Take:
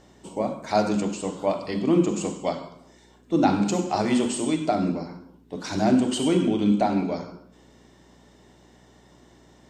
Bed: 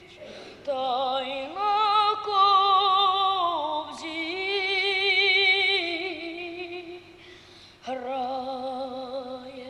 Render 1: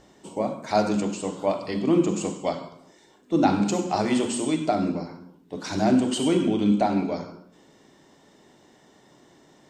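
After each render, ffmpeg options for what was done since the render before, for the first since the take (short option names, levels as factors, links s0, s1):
-af "bandreject=f=60:t=h:w=4,bandreject=f=120:t=h:w=4,bandreject=f=180:t=h:w=4,bandreject=f=240:t=h:w=4"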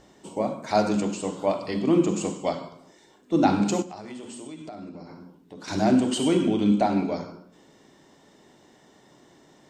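-filter_complex "[0:a]asettb=1/sr,asplit=3[s0][s1][s2];[s0]atrim=end=3.824[s3];[s1]atrim=start=3.82:end=5.68,asetpts=PTS-STARTPTS,afade=t=in:d=0.004:c=qsin,afade=t=out:st=1.856:d=0.004:c=qsin,acompressor=threshold=0.0112:ratio=4:attack=3.2:release=140:knee=1:detection=peak[s4];[s2]atrim=start=5.676[s5];[s3][s4]acrossfade=d=0.004:c1=hsin:c2=qsin[s6];[s6][s5]acrossfade=d=0.004:c1=qsin:c2=hsin"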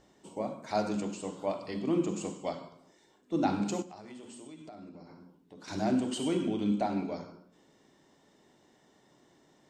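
-af "volume=0.376"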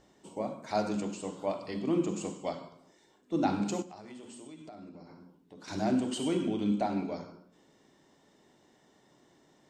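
-af anull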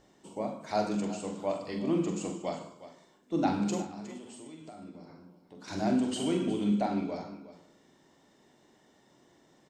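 -filter_complex "[0:a]asplit=2[s0][s1];[s1]adelay=44,volume=0.422[s2];[s0][s2]amix=inputs=2:normalize=0,aecho=1:1:362:0.178"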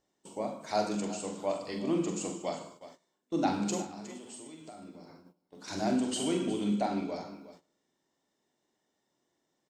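-af "agate=range=0.158:threshold=0.00251:ratio=16:detection=peak,bass=f=250:g=-4,treble=f=4000:g=5"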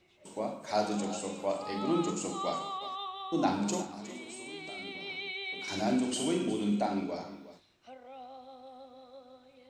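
-filter_complex "[1:a]volume=0.126[s0];[0:a][s0]amix=inputs=2:normalize=0"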